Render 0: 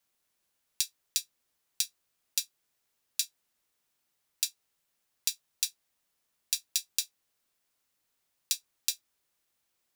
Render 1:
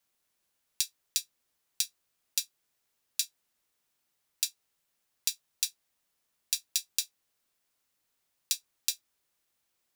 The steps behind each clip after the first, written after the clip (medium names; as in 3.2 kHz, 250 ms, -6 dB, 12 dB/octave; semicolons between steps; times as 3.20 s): no audible change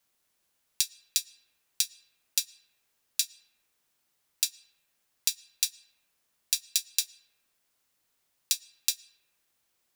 on a send at -20 dB: Savitzky-Golay filter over 9 samples + reverberation RT60 2.6 s, pre-delay 70 ms; on the sum: trim +3 dB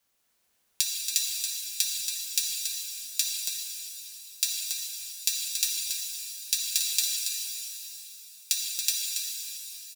delay 279 ms -7.5 dB; pitch-shifted reverb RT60 3.2 s, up +12 st, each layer -8 dB, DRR -1 dB